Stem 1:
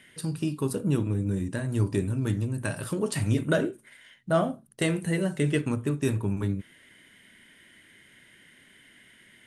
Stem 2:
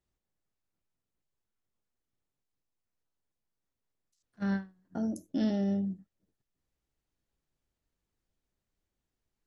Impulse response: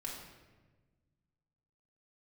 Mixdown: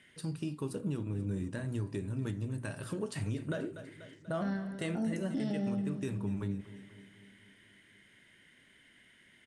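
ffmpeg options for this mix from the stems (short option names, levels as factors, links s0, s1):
-filter_complex "[0:a]volume=0.473,asplit=2[s0][s1];[s1]volume=0.126[s2];[1:a]highpass=60,volume=1.19,asplit=3[s3][s4][s5];[s4]volume=0.596[s6];[s5]volume=0.0891[s7];[2:a]atrim=start_sample=2205[s8];[s6][s8]afir=irnorm=-1:irlink=0[s9];[s2][s7]amix=inputs=2:normalize=0,aecho=0:1:243|486|729|972|1215|1458|1701|1944|2187:1|0.58|0.336|0.195|0.113|0.0656|0.0381|0.0221|0.0128[s10];[s0][s3][s9][s10]amix=inputs=4:normalize=0,lowpass=8500,alimiter=level_in=1.26:limit=0.0631:level=0:latency=1:release=210,volume=0.794"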